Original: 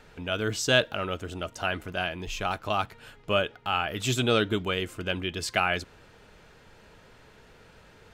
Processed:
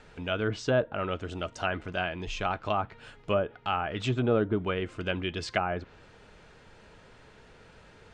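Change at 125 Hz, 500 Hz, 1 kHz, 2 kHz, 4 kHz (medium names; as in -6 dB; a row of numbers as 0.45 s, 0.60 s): 0.0 dB, -0.5 dB, -1.5 dB, -5.0 dB, -8.5 dB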